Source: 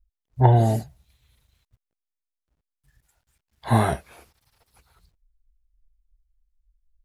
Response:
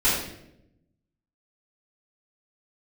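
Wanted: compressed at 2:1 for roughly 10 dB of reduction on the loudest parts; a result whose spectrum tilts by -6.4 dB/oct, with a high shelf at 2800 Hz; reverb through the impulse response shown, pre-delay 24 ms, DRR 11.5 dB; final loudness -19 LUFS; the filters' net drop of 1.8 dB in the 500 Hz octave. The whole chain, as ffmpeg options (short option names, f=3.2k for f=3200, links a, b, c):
-filter_complex "[0:a]equalizer=f=500:t=o:g=-3,highshelf=f=2.8k:g=5.5,acompressor=threshold=-30dB:ratio=2,asplit=2[a][b];[1:a]atrim=start_sample=2205,adelay=24[c];[b][c]afir=irnorm=-1:irlink=0,volume=-27dB[d];[a][d]amix=inputs=2:normalize=0,volume=11.5dB"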